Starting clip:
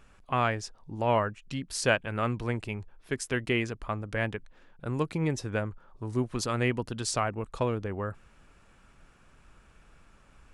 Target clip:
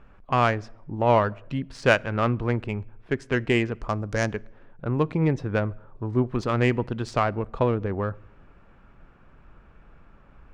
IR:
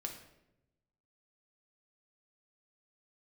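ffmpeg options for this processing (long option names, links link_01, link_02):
-filter_complex "[0:a]adynamicsmooth=sensitivity=1:basefreq=2000,asettb=1/sr,asplit=3[link_01][link_02][link_03];[link_01]atrim=end=3.814[link_04];[link_02]atrim=start=3.81:end=4.28,asetpts=PTS-STARTPTS,afade=type=in:duration=0.004:curve=qsin,afade=type=out:start_time=0.466:duration=0.004:curve=qsin,highshelf=frequency=4200:width_type=q:width=1.5:gain=12[link_05];[link_03]atrim=start=4.276[link_06];[link_04][link_05]acrossfade=duration=0.004:curve1=hsin:curve2=qsin[link_07];[link_07][link_06]acrossfade=duration=0.004:curve1=qsin:curve2=hsin,asplit=2[link_08][link_09];[1:a]atrim=start_sample=2205[link_10];[link_09][link_10]afir=irnorm=-1:irlink=0,volume=-16.5dB[link_11];[link_08][link_11]amix=inputs=2:normalize=0,volume=5.5dB"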